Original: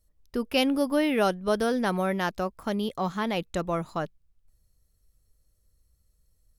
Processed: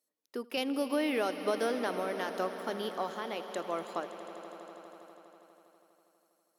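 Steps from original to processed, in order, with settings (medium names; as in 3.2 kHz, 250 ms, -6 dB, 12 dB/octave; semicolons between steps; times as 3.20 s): high-pass 270 Hz 24 dB/octave; compression, threshold -26 dBFS, peak gain reduction 8 dB; random-step tremolo; echo with a slow build-up 81 ms, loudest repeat 5, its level -16 dB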